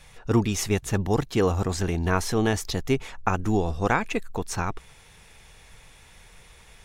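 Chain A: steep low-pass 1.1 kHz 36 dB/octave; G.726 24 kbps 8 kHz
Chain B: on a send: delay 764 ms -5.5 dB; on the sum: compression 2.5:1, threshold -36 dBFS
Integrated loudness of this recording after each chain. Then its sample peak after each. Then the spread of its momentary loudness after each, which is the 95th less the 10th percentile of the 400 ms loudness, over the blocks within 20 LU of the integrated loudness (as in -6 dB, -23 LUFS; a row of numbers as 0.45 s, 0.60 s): -27.0 LUFS, -36.0 LUFS; -9.5 dBFS, -19.0 dBFS; 8 LU, 15 LU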